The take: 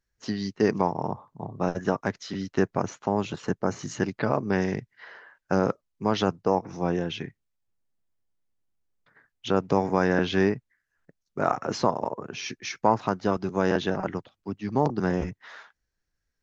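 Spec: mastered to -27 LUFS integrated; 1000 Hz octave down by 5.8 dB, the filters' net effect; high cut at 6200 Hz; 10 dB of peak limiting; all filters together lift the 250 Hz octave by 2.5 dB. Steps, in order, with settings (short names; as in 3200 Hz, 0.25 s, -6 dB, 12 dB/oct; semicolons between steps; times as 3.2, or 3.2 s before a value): LPF 6200 Hz; bell 250 Hz +4 dB; bell 1000 Hz -8 dB; gain +4.5 dB; limiter -14 dBFS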